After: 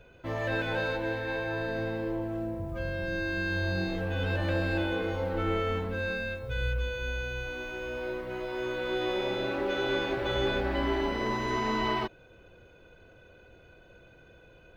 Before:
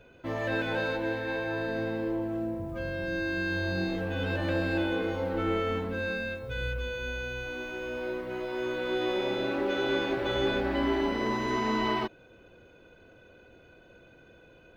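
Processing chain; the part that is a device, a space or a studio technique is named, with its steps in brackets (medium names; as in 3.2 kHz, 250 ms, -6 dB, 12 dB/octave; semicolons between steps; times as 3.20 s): low shelf boost with a cut just above (bass shelf 94 Hz +6.5 dB; peaking EQ 260 Hz -5 dB 0.8 oct)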